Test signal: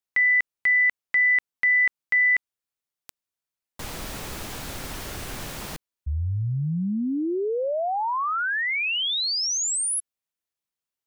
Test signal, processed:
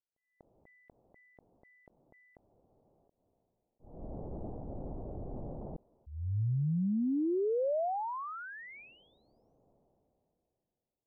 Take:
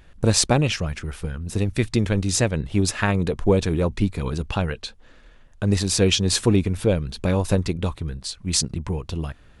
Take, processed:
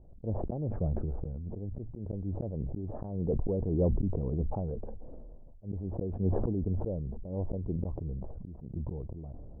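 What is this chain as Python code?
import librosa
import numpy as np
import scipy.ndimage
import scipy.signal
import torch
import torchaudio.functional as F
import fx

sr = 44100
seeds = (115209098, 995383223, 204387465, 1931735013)

y = fx.auto_swell(x, sr, attack_ms=333.0)
y = scipy.signal.sosfilt(scipy.signal.butter(6, 740.0, 'lowpass', fs=sr, output='sos'), y)
y = fx.sustainer(y, sr, db_per_s=20.0)
y = F.gain(torch.from_numpy(y), -5.0).numpy()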